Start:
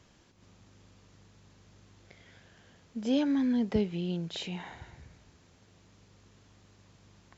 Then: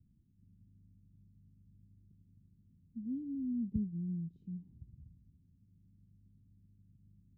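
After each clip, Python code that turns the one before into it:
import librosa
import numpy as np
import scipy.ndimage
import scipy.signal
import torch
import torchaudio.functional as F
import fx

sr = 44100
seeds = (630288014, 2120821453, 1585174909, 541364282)

y = scipy.signal.sosfilt(scipy.signal.cheby2(4, 50, 580.0, 'lowpass', fs=sr, output='sos'), x)
y = F.gain(torch.from_numpy(y), -3.0).numpy()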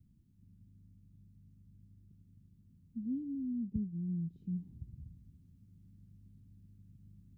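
y = fx.rider(x, sr, range_db=10, speed_s=0.5)
y = F.gain(torch.from_numpy(y), 1.5).numpy()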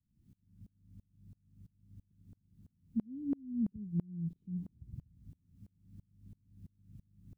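y = fx.tremolo_decay(x, sr, direction='swelling', hz=3.0, depth_db=32)
y = F.gain(torch.from_numpy(y), 10.0).numpy()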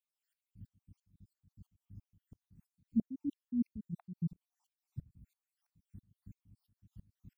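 y = fx.spec_dropout(x, sr, seeds[0], share_pct=70)
y = F.gain(torch.from_numpy(y), 3.5).numpy()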